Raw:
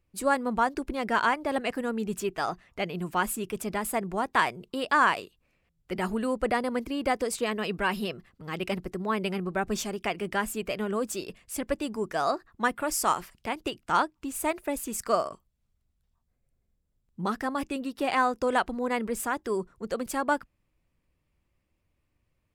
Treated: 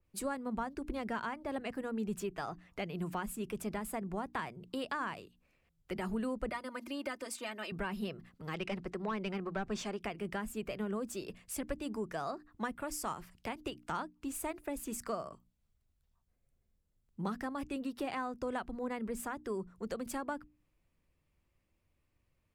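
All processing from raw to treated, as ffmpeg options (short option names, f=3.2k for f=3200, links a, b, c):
-filter_complex "[0:a]asettb=1/sr,asplit=3[a][b][c];[a]atrim=end=6.494[d];[b]atrim=start=6.49:end=7.72,asetpts=PTS-STARTPTS,afade=t=in:d=0.004:c=qsin,afade=t=out:st=1.226:d=0.004:c=qsin,highpass=f=780:p=1,aecho=1:1:3.3:0.78,atrim=end_sample=54243[e];[c]atrim=start=7.716[f];[d][e]acrossfade=d=0.004:c1=hsin:c2=qsin[g];[g][f]acrossfade=d=0.004:c1=qsin:c2=hsin,asettb=1/sr,asplit=3[h][i][j];[h]atrim=end=8.544[k];[i]atrim=start=8.54:end=10.01,asetpts=PTS-STARTPTS,afade=t=in:d=0.004:c=qsin,afade=t=out:st=1.466:d=0.004:c=qsin,lowpass=9k,asplit=2[l][m];[m]highpass=f=720:p=1,volume=13dB,asoftclip=type=tanh:threshold=-16.5dB[n];[l][n]amix=inputs=2:normalize=0,lowpass=f=3.8k:p=1,volume=-6dB[o];[j]atrim=start=10.006[p];[k][o]acrossfade=d=0.004:c1=hsin:c2=qsin[q];[q][p]acrossfade=d=0.004:c1=qsin:c2=hsin,bandreject=f=60:t=h:w=6,bandreject=f=120:t=h:w=6,bandreject=f=180:t=h:w=6,bandreject=f=240:t=h:w=6,bandreject=f=300:t=h:w=6,acrossover=split=210[r][s];[s]acompressor=threshold=-37dB:ratio=3[t];[r][t]amix=inputs=2:normalize=0,adynamicequalizer=threshold=0.00282:dfrequency=2400:dqfactor=0.7:tfrequency=2400:tqfactor=0.7:attack=5:release=100:ratio=0.375:range=1.5:mode=cutabove:tftype=highshelf,volume=-2dB"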